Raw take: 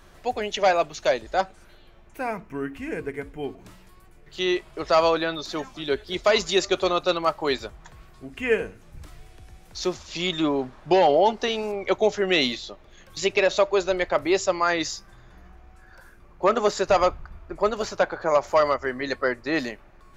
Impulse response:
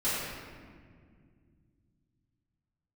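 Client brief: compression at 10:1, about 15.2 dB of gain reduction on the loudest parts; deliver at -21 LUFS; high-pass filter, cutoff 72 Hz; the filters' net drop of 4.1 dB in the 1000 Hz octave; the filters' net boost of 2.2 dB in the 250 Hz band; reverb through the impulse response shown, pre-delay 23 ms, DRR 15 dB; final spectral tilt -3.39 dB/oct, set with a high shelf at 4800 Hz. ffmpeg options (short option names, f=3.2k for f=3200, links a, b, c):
-filter_complex "[0:a]highpass=72,equalizer=f=250:t=o:g=4,equalizer=f=1k:t=o:g=-6.5,highshelf=f=4.8k:g=6.5,acompressor=threshold=-31dB:ratio=10,asplit=2[a][b];[1:a]atrim=start_sample=2205,adelay=23[c];[b][c]afir=irnorm=-1:irlink=0,volume=-25dB[d];[a][d]amix=inputs=2:normalize=0,volume=15dB"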